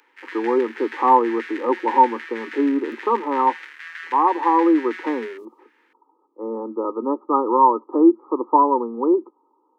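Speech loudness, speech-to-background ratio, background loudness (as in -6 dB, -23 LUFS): -20.0 LUFS, 16.0 dB, -36.0 LUFS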